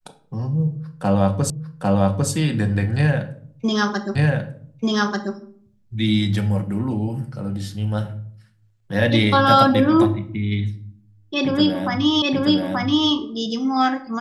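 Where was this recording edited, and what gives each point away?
1.50 s: repeat of the last 0.8 s
4.15 s: repeat of the last 1.19 s
12.22 s: repeat of the last 0.88 s

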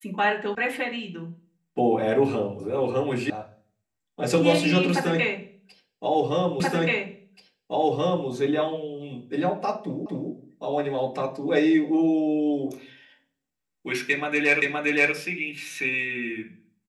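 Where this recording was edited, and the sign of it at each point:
0.55 s: sound stops dead
3.30 s: sound stops dead
6.60 s: repeat of the last 1.68 s
10.06 s: repeat of the last 0.25 s
14.62 s: repeat of the last 0.52 s

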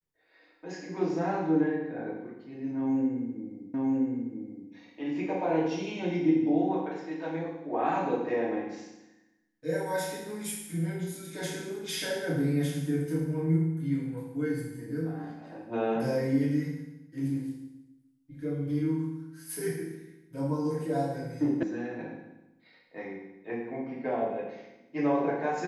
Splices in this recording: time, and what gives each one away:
3.74 s: repeat of the last 0.97 s
21.63 s: sound stops dead

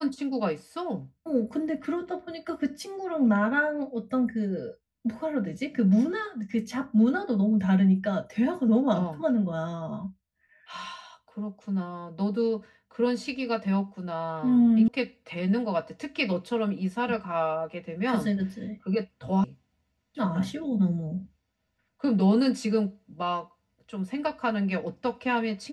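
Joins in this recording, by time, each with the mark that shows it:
14.88 s: sound stops dead
19.44 s: sound stops dead

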